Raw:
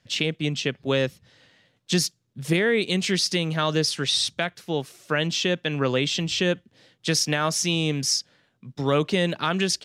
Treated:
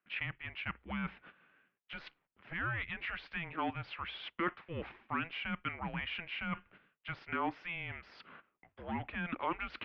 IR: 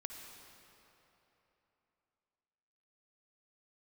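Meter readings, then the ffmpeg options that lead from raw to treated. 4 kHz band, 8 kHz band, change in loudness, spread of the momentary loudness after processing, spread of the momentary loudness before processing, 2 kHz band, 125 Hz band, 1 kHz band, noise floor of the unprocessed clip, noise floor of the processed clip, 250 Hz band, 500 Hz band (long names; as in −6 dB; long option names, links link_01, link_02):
−22.0 dB, below −40 dB, −15.5 dB, 12 LU, 8 LU, −10.0 dB, −18.0 dB, −7.5 dB, −69 dBFS, −85 dBFS, −16.5 dB, −22.0 dB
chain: -af "aeval=exprs='(tanh(5.01*val(0)+0.1)-tanh(0.1))/5.01':channel_layout=same,agate=range=-16dB:threshold=-51dB:ratio=16:detection=peak,areverse,acompressor=threshold=-37dB:ratio=16,areverse,bandreject=frequency=50:width_type=h:width=6,bandreject=frequency=100:width_type=h:width=6,bandreject=frequency=150:width_type=h:width=6,bandreject=frequency=200:width_type=h:width=6,bandreject=frequency=250:width_type=h:width=6,bandreject=frequency=300:width_type=h:width=6,bandreject=frequency=350:width_type=h:width=6,bandreject=frequency=400:width_type=h:width=6,highpass=frequency=590:width_type=q:width=0.5412,highpass=frequency=590:width_type=q:width=1.307,lowpass=frequency=2800:width_type=q:width=0.5176,lowpass=frequency=2800:width_type=q:width=0.7071,lowpass=frequency=2800:width_type=q:width=1.932,afreqshift=-340,volume=9dB"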